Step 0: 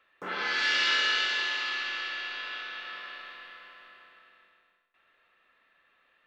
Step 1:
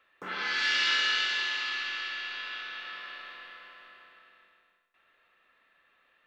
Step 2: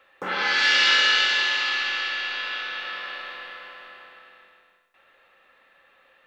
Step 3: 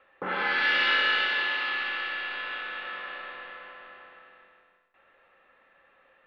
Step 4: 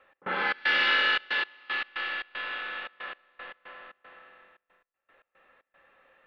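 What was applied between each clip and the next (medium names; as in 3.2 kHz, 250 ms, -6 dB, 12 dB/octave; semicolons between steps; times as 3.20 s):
dynamic bell 540 Hz, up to -6 dB, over -48 dBFS, Q 0.75
small resonant body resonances 540/800 Hz, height 11 dB, ringing for 60 ms; trim +8 dB
distance through air 410 m
trance gate "x.xx.xxxx.x.." 115 bpm -24 dB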